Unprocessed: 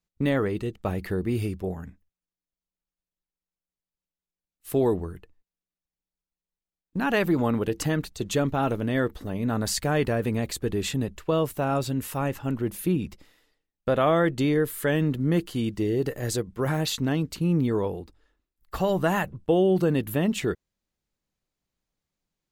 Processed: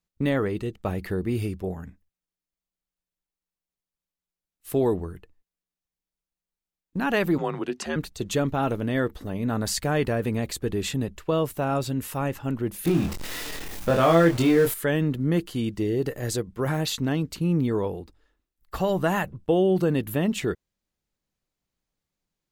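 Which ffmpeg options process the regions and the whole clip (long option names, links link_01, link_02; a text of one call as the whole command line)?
ffmpeg -i in.wav -filter_complex "[0:a]asettb=1/sr,asplit=3[link_01][link_02][link_03];[link_01]atrim=end=7.384[link_04];[link_02]atrim=start=7.38:end=7.96,asetpts=PTS-STARTPTS,afade=type=in:duration=0.004:curve=qsin,afade=type=out:start_time=0.576:duration=0.004:curve=qsin,afreqshift=-84,highpass=260,lowpass=6800[link_05];[link_03]atrim=start=7.956[link_06];[link_04][link_05]acrossfade=duration=0.004:curve1=hsin:curve2=qsin[link_07];[link_07][link_06]acrossfade=duration=0.004:curve1=qsin:curve2=hsin,asettb=1/sr,asplit=3[link_08][link_09][link_10];[link_08]atrim=end=12.854[link_11];[link_09]atrim=start=12.85:end=14.74,asetpts=PTS-STARTPTS,afade=type=in:duration=0.004:curve=qsin,afade=type=out:start_time=1.886:duration=0.004:curve=qsin,aeval=exprs='val(0)+0.5*0.0335*sgn(val(0))':channel_layout=same,asplit=2[link_12][link_13];[link_13]adelay=24,volume=-3dB[link_14];[link_12][link_14]amix=inputs=2:normalize=0,atrim=end_sample=83349[link_15];[link_10]atrim=start=14.736[link_16];[link_11][link_15]acrossfade=duration=0.004:curve1=hsin:curve2=qsin[link_17];[link_17][link_16]acrossfade=duration=0.004:curve1=qsin:curve2=hsin" out.wav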